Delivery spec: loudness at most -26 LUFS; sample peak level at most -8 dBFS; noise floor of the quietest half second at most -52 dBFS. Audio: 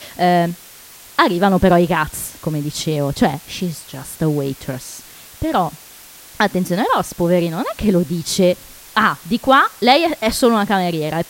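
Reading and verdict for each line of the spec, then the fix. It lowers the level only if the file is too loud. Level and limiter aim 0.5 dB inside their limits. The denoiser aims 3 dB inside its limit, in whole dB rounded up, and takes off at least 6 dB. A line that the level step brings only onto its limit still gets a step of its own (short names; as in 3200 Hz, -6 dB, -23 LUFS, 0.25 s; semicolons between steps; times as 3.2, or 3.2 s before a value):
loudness -17.5 LUFS: fail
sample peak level -1.5 dBFS: fail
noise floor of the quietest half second -41 dBFS: fail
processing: denoiser 6 dB, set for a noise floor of -41 dBFS; gain -9 dB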